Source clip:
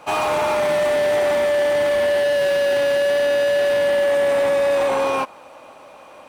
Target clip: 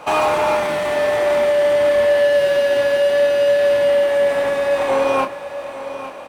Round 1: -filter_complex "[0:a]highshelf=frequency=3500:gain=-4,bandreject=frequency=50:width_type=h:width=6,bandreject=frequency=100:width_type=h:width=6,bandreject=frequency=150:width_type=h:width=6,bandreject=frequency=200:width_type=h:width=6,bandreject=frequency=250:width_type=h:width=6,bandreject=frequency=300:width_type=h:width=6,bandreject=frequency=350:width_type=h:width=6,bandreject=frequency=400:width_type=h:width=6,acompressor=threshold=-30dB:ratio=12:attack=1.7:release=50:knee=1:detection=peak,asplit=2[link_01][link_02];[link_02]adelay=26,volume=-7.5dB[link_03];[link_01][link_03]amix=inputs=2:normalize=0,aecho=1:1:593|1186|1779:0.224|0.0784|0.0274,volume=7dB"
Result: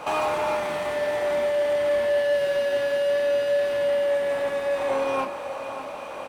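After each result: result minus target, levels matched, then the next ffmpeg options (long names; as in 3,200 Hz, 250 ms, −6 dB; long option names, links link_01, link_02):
downward compressor: peak gain reduction +8 dB; echo 256 ms early
-filter_complex "[0:a]highshelf=frequency=3500:gain=-4,bandreject=frequency=50:width_type=h:width=6,bandreject=frequency=100:width_type=h:width=6,bandreject=frequency=150:width_type=h:width=6,bandreject=frequency=200:width_type=h:width=6,bandreject=frequency=250:width_type=h:width=6,bandreject=frequency=300:width_type=h:width=6,bandreject=frequency=350:width_type=h:width=6,bandreject=frequency=400:width_type=h:width=6,acompressor=threshold=-21.5dB:ratio=12:attack=1.7:release=50:knee=1:detection=peak,asplit=2[link_01][link_02];[link_02]adelay=26,volume=-7.5dB[link_03];[link_01][link_03]amix=inputs=2:normalize=0,aecho=1:1:593|1186|1779:0.224|0.0784|0.0274,volume=7dB"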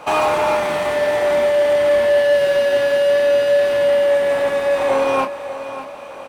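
echo 256 ms early
-filter_complex "[0:a]highshelf=frequency=3500:gain=-4,bandreject=frequency=50:width_type=h:width=6,bandreject=frequency=100:width_type=h:width=6,bandreject=frequency=150:width_type=h:width=6,bandreject=frequency=200:width_type=h:width=6,bandreject=frequency=250:width_type=h:width=6,bandreject=frequency=300:width_type=h:width=6,bandreject=frequency=350:width_type=h:width=6,bandreject=frequency=400:width_type=h:width=6,acompressor=threshold=-21.5dB:ratio=12:attack=1.7:release=50:knee=1:detection=peak,asplit=2[link_01][link_02];[link_02]adelay=26,volume=-7.5dB[link_03];[link_01][link_03]amix=inputs=2:normalize=0,aecho=1:1:849|1698|2547:0.224|0.0784|0.0274,volume=7dB"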